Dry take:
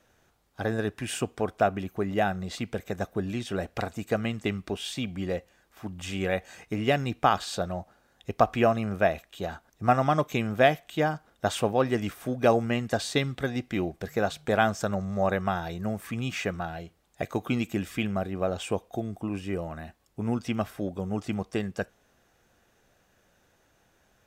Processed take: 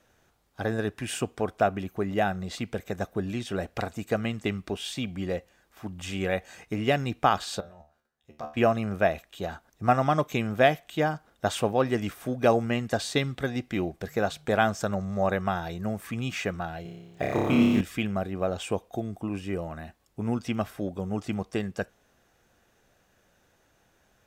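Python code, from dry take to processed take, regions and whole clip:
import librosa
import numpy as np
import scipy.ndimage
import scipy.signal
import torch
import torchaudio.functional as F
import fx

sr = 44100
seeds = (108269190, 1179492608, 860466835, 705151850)

y = fx.chain(x, sr, fx.level_steps(step_db=13),
    fx.comb_fb(f0_hz=75.0, decay_s=0.35, harmonics='all', damping=0.0, mix_pct=90), at=(7.6, 8.57))
y = fx.chain(y, sr, fx.median_filter(points=5),
    fx.room_flutter(wall_m=5.0, rt60_s=1.3), at=(16.82, 17.81))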